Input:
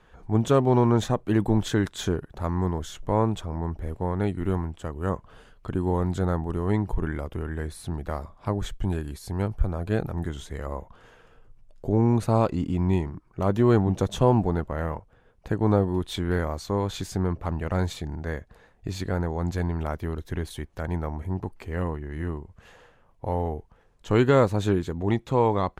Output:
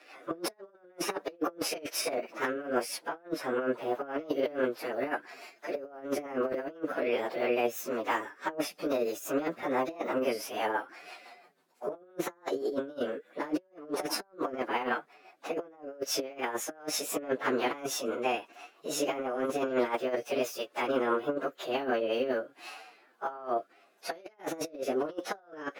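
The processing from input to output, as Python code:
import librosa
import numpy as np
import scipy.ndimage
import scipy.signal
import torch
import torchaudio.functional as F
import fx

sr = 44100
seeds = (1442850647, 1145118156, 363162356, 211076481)

y = fx.pitch_bins(x, sr, semitones=7.5)
y = scipy.signal.sosfilt(scipy.signal.butter(4, 370.0, 'highpass', fs=sr, output='sos'), y)
y = fx.hpss(y, sr, part='harmonic', gain_db=9)
y = fx.over_compress(y, sr, threshold_db=-31.0, ratio=-0.5)
y = fx.rotary_switch(y, sr, hz=6.0, then_hz=1.1, switch_at_s=21.96)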